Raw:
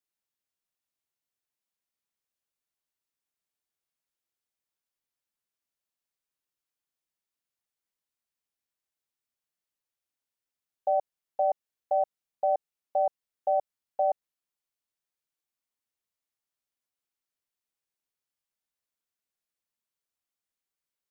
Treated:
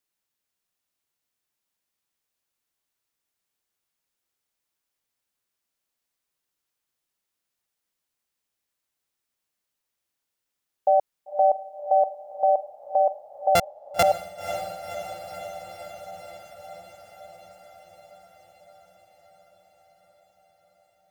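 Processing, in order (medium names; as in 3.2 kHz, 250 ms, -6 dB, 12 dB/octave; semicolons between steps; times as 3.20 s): 13.55–14.03 s: sorted samples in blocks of 64 samples; on a send: echo that smears into a reverb 530 ms, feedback 72%, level -10 dB; on the sum: trim +6.5 dB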